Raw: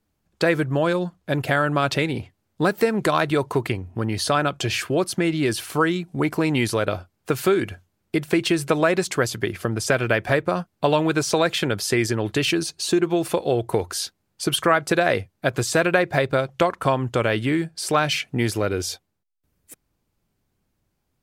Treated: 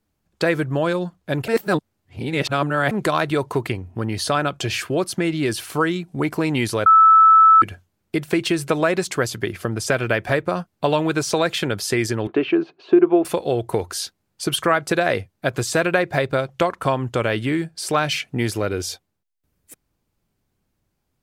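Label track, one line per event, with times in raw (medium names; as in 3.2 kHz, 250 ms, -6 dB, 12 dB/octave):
1.480000	2.910000	reverse
6.860000	7.620000	bleep 1.31 kHz -7.5 dBFS
12.270000	13.250000	cabinet simulation 260–2400 Hz, peaks and dips at 270 Hz +6 dB, 380 Hz +9 dB, 700 Hz +5 dB, 1.1 kHz +3 dB, 1.9 kHz -6 dB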